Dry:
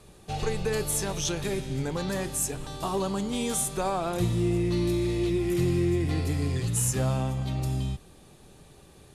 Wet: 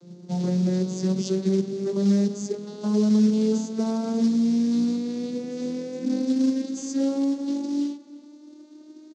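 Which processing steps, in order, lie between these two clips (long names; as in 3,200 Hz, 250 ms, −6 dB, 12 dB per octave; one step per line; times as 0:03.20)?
vocoder with a gliding carrier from F3, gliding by +10 semitones
in parallel at +2 dB: brickwall limiter −25 dBFS, peak gain reduction 9 dB
on the sum: floating-point word with a short mantissa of 2 bits
elliptic band-pass filter 140–6,300 Hz, stop band 50 dB
flat-topped bell 1,400 Hz −12.5 dB 2.6 octaves
far-end echo of a speakerphone 330 ms, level −19 dB
level +1.5 dB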